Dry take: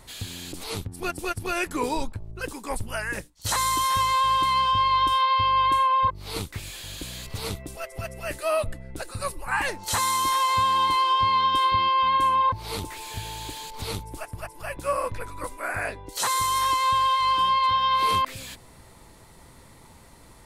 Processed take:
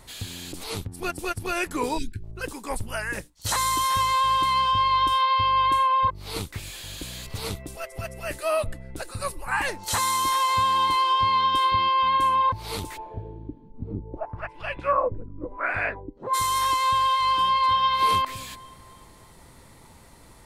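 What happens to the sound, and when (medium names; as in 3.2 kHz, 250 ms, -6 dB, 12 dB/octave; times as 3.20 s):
1.98–2.23 s: spectral selection erased 410–1400 Hz
12.96–16.33 s: LFO low-pass sine 0.27 Hz -> 1.6 Hz 230–3200 Hz
17.25–17.83 s: echo throw 300 ms, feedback 45%, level -12 dB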